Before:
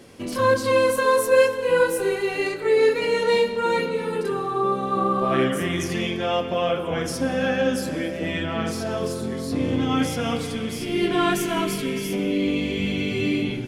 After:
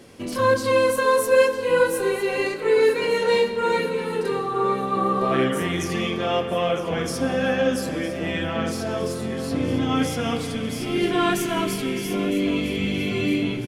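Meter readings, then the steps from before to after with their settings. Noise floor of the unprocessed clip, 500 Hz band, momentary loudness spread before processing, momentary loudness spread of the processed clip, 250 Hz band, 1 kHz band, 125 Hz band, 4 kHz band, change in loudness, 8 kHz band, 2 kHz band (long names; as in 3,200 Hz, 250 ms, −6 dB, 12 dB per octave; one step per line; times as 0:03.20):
−30 dBFS, 0.0 dB, 8 LU, 7 LU, 0.0 dB, 0.0 dB, +0.5 dB, 0.0 dB, 0.0 dB, 0.0 dB, 0.0 dB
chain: repeating echo 958 ms, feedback 50%, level −14 dB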